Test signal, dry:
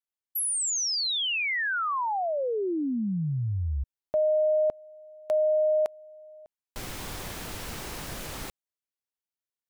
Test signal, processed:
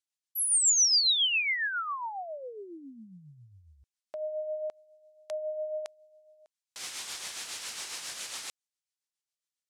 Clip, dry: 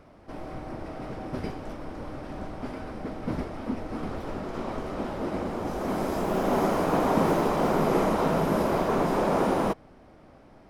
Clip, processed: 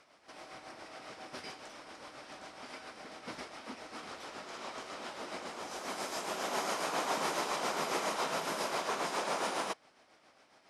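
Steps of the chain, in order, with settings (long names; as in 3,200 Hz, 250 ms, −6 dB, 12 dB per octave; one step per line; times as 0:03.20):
meter weighting curve ITU-R 468
amplitude tremolo 7.3 Hz, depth 46%
level −5 dB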